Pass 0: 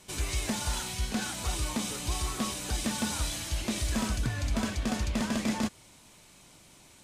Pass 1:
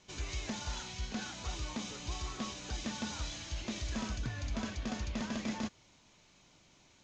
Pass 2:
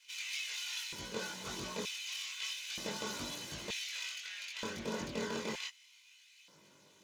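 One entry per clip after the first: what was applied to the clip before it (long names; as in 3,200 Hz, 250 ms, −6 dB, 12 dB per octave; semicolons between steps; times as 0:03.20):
elliptic low-pass filter 6,800 Hz, stop band 40 dB; level −6.5 dB
lower of the sound and its delayed copy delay 2 ms; multi-voice chorus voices 2, 0.3 Hz, delay 21 ms, depth 1.1 ms; auto-filter high-pass square 0.54 Hz 210–2,500 Hz; level +5 dB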